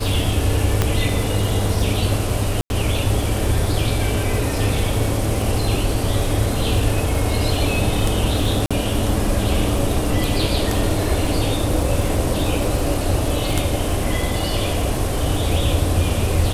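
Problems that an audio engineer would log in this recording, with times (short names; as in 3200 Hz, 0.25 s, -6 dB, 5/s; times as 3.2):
crackle 47/s -25 dBFS
0.82 pop -3 dBFS
2.61–2.7 gap 91 ms
8.66–8.71 gap 46 ms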